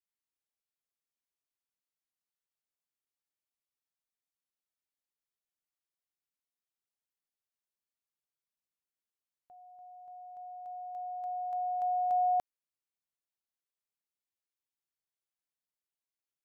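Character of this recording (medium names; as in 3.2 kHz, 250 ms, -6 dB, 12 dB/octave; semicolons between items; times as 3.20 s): noise floor -95 dBFS; spectral tilt +5.5 dB/octave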